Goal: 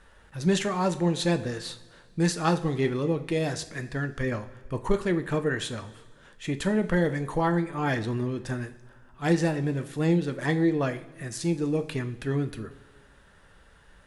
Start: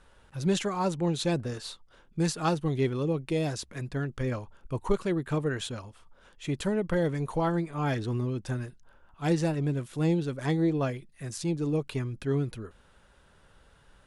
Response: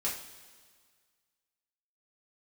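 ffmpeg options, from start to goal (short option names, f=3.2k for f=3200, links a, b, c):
-filter_complex "[0:a]equalizer=f=1.8k:t=o:w=0.25:g=8,asplit=2[a][b];[1:a]atrim=start_sample=2205[c];[b][c]afir=irnorm=-1:irlink=0,volume=-9.5dB[d];[a][d]amix=inputs=2:normalize=0"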